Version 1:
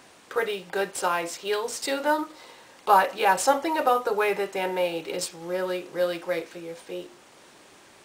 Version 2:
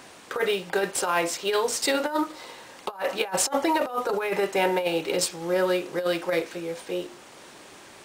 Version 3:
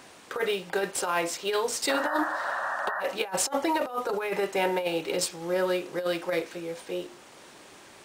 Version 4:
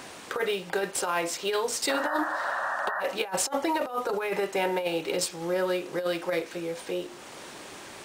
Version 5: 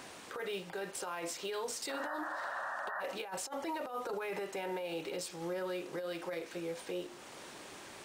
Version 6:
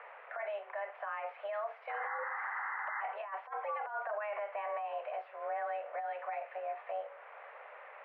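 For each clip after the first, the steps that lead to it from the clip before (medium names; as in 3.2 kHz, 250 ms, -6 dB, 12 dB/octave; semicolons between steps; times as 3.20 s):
compressor with a negative ratio -26 dBFS, ratio -0.5; trim +2.5 dB
painted sound noise, 1.89–3.01 s, 540–1900 Hz -28 dBFS; trim -3 dB
compression 1.5:1, threshold -45 dBFS, peak gain reduction 8.5 dB; trim +7 dB
peak limiter -24 dBFS, peak gain reduction 9.5 dB; trim -6.5 dB
octave divider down 2 oct, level -5 dB; mistuned SSB +210 Hz 280–2100 Hz; trim +1 dB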